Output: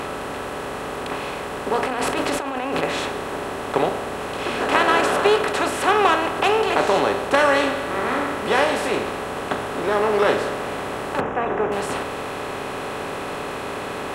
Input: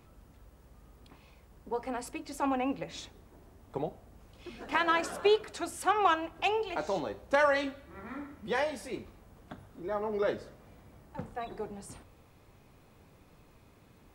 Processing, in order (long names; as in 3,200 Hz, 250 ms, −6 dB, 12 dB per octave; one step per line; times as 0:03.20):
compressor on every frequency bin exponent 0.4
0:01.82–0:02.83: compressor whose output falls as the input rises −29 dBFS, ratio −1
0:11.20–0:11.72: moving average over 10 samples
level +5 dB